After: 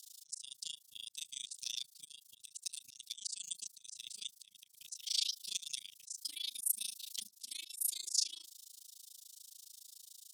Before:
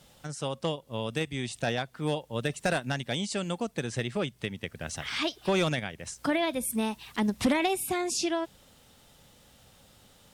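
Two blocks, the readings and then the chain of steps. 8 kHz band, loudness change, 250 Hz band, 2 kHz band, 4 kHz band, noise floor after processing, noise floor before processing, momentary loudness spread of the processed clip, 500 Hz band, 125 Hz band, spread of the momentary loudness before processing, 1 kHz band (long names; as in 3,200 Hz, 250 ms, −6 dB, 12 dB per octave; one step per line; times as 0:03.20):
−0.5 dB, −9.0 dB, below −40 dB, −24.5 dB, −4.0 dB, −68 dBFS, −59 dBFS, 19 LU, below −40 dB, below −40 dB, 9 LU, below −40 dB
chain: inverse Chebyshev high-pass filter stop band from 1,800 Hz, stop band 50 dB
volume swells 210 ms
amplitude modulation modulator 27 Hz, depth 100%
level +12.5 dB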